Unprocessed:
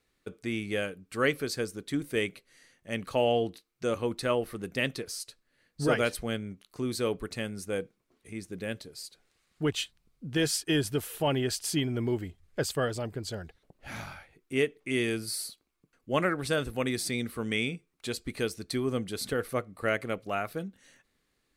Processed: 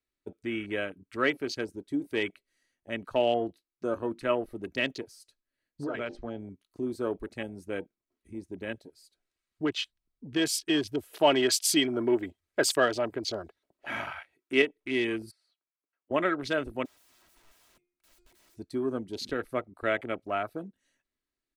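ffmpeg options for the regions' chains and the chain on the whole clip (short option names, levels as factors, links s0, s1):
-filter_complex "[0:a]asettb=1/sr,asplit=3[s0][s1][s2];[s0]atrim=end=5.844[s3];[s1]atrim=start=5.84:end=6.4,asetpts=PTS-STARTPTS,afade=t=in:d=0.004:c=qsin,afade=t=out:st=0.556:d=0.004:c=qsin,lowpass=f=5900:w=0.5412,lowpass=f=5900:w=1.3066,bandreject=f=50:t=h:w=6,bandreject=f=100:t=h:w=6,bandreject=f=150:t=h:w=6,bandreject=f=200:t=h:w=6,bandreject=f=250:t=h:w=6,bandreject=f=300:t=h:w=6,bandreject=f=350:t=h:w=6,bandreject=f=400:t=h:w=6,acompressor=threshold=0.0398:ratio=12:attack=3.2:release=140:knee=1:detection=peak[s4];[s2]atrim=start=6.396[s5];[s3][s4]acrossfade=d=0.004:c1=hsin:c2=qsin[s6];[s6][s5]acrossfade=d=0.004:c1=qsin:c2=hsin,asettb=1/sr,asplit=3[s7][s8][s9];[s7]atrim=end=11.134[s10];[s8]atrim=start=11.13:end=14.62,asetpts=PTS-STARTPTS,afade=t=in:d=0.004:c=qsin,afade=t=out:st=3.486:d=0.004:c=qsin,highpass=f=350:p=1,acontrast=84[s11];[s9]atrim=start=14.616[s12];[s10][s11]acrossfade=d=0.004:c1=hsin:c2=qsin[s13];[s13][s12]acrossfade=d=0.004:c1=qsin:c2=hsin,asettb=1/sr,asplit=3[s14][s15][s16];[s14]atrim=end=15.314[s17];[s15]atrim=start=15.31:end=16.11,asetpts=PTS-STARTPTS,afade=t=in:d=0.004:c=qsin,afade=t=out:st=0.796:d=0.004:c=qsin,acompressor=threshold=0.0112:ratio=3:attack=3.2:release=140:knee=1:detection=peak,highpass=680,lowpass=2400[s18];[s16]atrim=start=16.106[s19];[s17][s18]acrossfade=d=0.004:c1=hsin:c2=qsin[s20];[s20][s19]acrossfade=d=0.004:c1=qsin:c2=hsin,asettb=1/sr,asplit=3[s21][s22][s23];[s21]atrim=end=16.854[s24];[s22]atrim=start=16.85:end=18.57,asetpts=PTS-STARTPTS,afade=t=in:d=0.004:c=qsin,afade=t=out:st=1.716:d=0.004:c=qsin,bandreject=f=353.9:t=h:w=4,bandreject=f=707.8:t=h:w=4,bandreject=f=1061.7:t=h:w=4,bandreject=f=1415.6:t=h:w=4,bandreject=f=1769.5:t=h:w=4,bandreject=f=2123.4:t=h:w=4,bandreject=f=2477.3:t=h:w=4,acompressor=threshold=0.0224:ratio=16:attack=3.2:release=140:knee=1:detection=peak,aeval=exprs='(mod(150*val(0)+1,2)-1)/150':c=same[s25];[s23]atrim=start=18.566[s26];[s24][s25]acrossfade=d=0.004:c1=hsin:c2=qsin[s27];[s27][s26]acrossfade=d=0.004:c1=qsin:c2=hsin,aecho=1:1:3.1:0.43,acrossover=split=230|3000[s28][s29][s30];[s28]acompressor=threshold=0.00398:ratio=2[s31];[s31][s29][s30]amix=inputs=3:normalize=0,afwtdn=0.0112"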